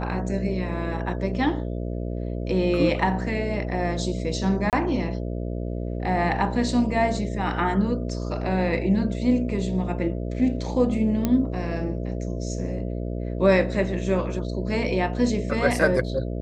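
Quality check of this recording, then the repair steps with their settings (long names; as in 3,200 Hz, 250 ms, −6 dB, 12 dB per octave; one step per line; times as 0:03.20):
mains buzz 60 Hz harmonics 11 −29 dBFS
0:04.70–0:04.73: drop-out 28 ms
0:11.25: click −10 dBFS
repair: click removal
hum removal 60 Hz, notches 11
repair the gap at 0:04.70, 28 ms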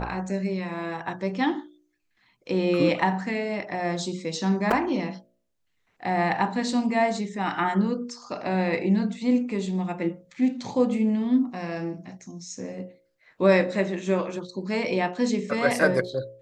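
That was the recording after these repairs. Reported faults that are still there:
none of them is left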